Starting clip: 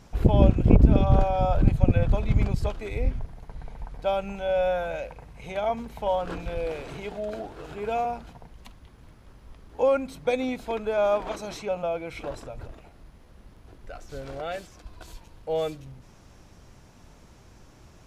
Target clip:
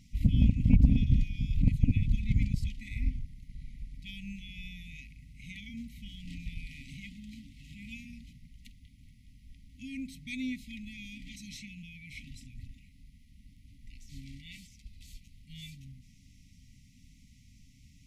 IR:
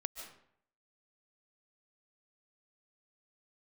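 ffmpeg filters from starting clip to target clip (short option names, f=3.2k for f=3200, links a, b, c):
-af "afftfilt=real='re*(1-between(b*sr/4096,280,1900))':imag='im*(1-between(b*sr/4096,280,1900))':win_size=4096:overlap=0.75,aeval=exprs='0.631*(cos(1*acos(clip(val(0)/0.631,-1,1)))-cos(1*PI/2))+0.0178*(cos(6*acos(clip(val(0)/0.631,-1,1)))-cos(6*PI/2))':c=same,volume=-5dB"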